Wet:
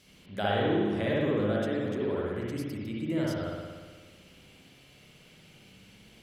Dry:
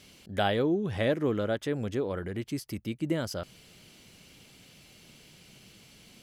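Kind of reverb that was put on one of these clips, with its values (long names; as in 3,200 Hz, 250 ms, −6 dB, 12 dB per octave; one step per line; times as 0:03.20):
spring reverb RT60 1.5 s, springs 58 ms, chirp 65 ms, DRR −5.5 dB
level −6 dB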